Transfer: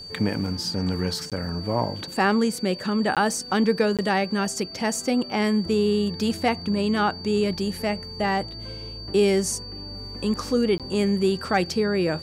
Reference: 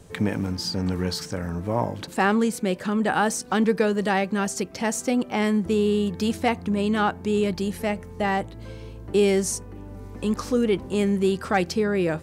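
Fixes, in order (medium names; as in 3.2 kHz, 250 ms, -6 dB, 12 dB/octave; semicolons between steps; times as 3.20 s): band-stop 4.6 kHz, Q 30; interpolate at 1.30/3.15/3.97/10.78 s, 17 ms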